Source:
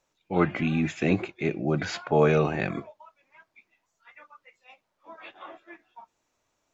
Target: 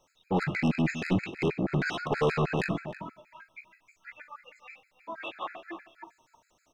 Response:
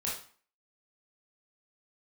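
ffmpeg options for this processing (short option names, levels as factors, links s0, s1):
-filter_complex "[0:a]acrossover=split=3300[s0][s1];[s1]acompressor=threshold=0.00251:ratio=4:attack=1:release=60[s2];[s0][s2]amix=inputs=2:normalize=0,asettb=1/sr,asplit=3[s3][s4][s5];[s3]atrim=end=2.734[s6];[s4]atrim=start=2.73:end=5.23,asetpts=PTS-STARTPTS,afade=t=in:d=0.004:c=qsin,afade=t=out:st=2.496:d=0.004:c=qsin,equalizer=f=480:w=0.93:g=-4[s7];[s5]atrim=start=5.226[s8];[s6][s7]acrossfade=d=0.004:c1=hsin:c2=qsin[s9];[s9][s8]acrossfade=d=0.004:c1=qsin:c2=hsin,asplit=2[s10][s11];[s11]acompressor=threshold=0.02:ratio=6,volume=0.708[s12];[s10][s12]amix=inputs=2:normalize=0,asoftclip=type=tanh:threshold=0.0531,asplit=2[s13][s14];[s14]adelay=309,volume=0.251,highshelf=f=4000:g=-6.95[s15];[s13][s15]amix=inputs=2:normalize=0,asplit=2[s16][s17];[1:a]atrim=start_sample=2205[s18];[s17][s18]afir=irnorm=-1:irlink=0,volume=0.224[s19];[s16][s19]amix=inputs=2:normalize=0,afftfilt=real='re*gt(sin(2*PI*6.3*pts/sr)*(1-2*mod(floor(b*sr/1024/1300),2)),0)':imag='im*gt(sin(2*PI*6.3*pts/sr)*(1-2*mod(floor(b*sr/1024/1300),2)),0)':win_size=1024:overlap=0.75,volume=1.41"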